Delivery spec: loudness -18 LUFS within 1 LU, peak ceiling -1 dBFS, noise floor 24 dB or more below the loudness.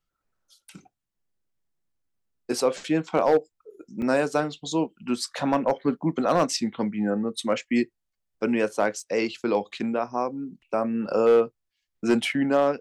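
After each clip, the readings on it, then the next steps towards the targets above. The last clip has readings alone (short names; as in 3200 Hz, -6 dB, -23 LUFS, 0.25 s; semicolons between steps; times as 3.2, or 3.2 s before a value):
clipped 0.3%; flat tops at -12.5 dBFS; dropouts 2; longest dropout 2.4 ms; loudness -25.5 LUFS; peak -12.5 dBFS; loudness target -18.0 LUFS
-> clip repair -12.5 dBFS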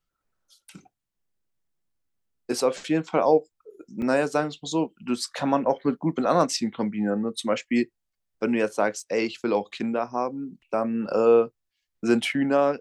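clipped 0.0%; dropouts 2; longest dropout 2.4 ms
-> interpolate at 4.02/9, 2.4 ms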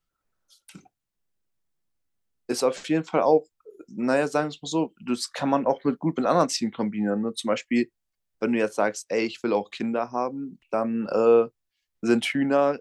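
dropouts 0; loudness -25.0 LUFS; peak -7.0 dBFS; loudness target -18.0 LUFS
-> gain +7 dB; limiter -1 dBFS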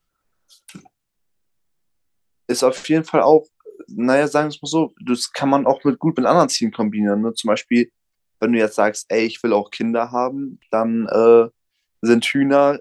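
loudness -18.0 LUFS; peak -1.0 dBFS; noise floor -74 dBFS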